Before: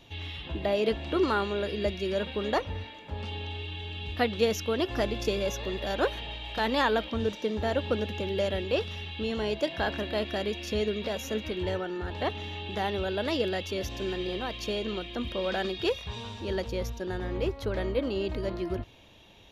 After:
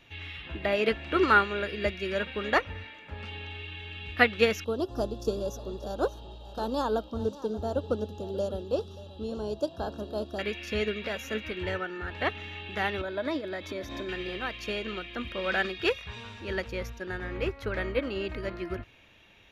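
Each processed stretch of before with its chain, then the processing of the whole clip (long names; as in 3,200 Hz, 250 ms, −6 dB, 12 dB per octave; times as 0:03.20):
0:04.64–0:10.39: Butterworth band-reject 2,100 Hz, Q 0.57 + single-tap delay 582 ms −14.5 dB
0:13.01–0:14.09: downward compressor 16 to 1, threshold −33 dBFS + notch filter 2,800 Hz, Q 5.8 + hollow resonant body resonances 300/610/980/3,700 Hz, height 12 dB, ringing for 30 ms
whole clip: flat-topped bell 1,800 Hz +9 dB 1.3 octaves; expander for the loud parts 1.5 to 1, over −34 dBFS; level +2.5 dB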